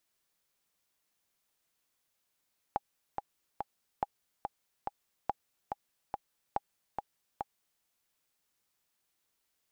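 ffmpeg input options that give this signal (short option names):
-f lavfi -i "aevalsrc='pow(10,(-16.5-5*gte(mod(t,3*60/142),60/142))/20)*sin(2*PI*814*mod(t,60/142))*exp(-6.91*mod(t,60/142)/0.03)':d=5.07:s=44100"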